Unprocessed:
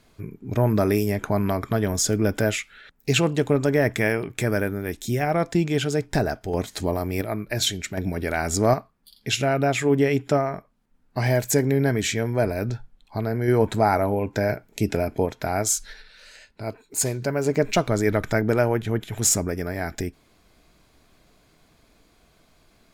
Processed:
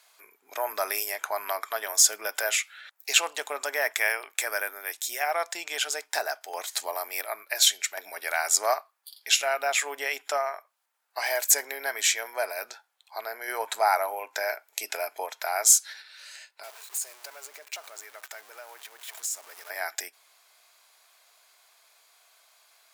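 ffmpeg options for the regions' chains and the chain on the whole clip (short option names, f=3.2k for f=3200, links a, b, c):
-filter_complex "[0:a]asettb=1/sr,asplit=3[a][b][c];[a]atrim=end=16.634[d];[b]atrim=start=16.63:end=19.7,asetpts=PTS-STARTPTS,afade=t=in:d=0.004:c=qsin,afade=t=out:st=3.066:d=0.004:c=qsin,aeval=exprs='val(0)+0.5*0.0447*sgn(val(0))':c=same,agate=range=-33dB:threshold=-25dB:ratio=3:release=100:detection=peak,acompressor=threshold=-36dB:ratio=5:attack=3.2:release=140:knee=1:detection=peak[e];[c]atrim=start=19.696[f];[d][e]acrossfade=d=0.004:c1=hsin:c2=qsin[g];[g][f]acrossfade=d=0.004:c1=qsin:c2=hsin,highpass=f=720:w=0.5412,highpass=f=720:w=1.3066,highshelf=f=5.8k:g=9"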